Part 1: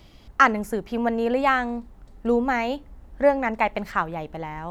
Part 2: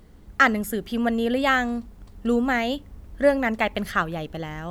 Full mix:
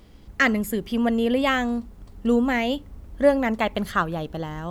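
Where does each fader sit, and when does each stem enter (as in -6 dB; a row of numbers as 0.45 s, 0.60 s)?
-6.5 dB, -0.5 dB; 0.00 s, 0.00 s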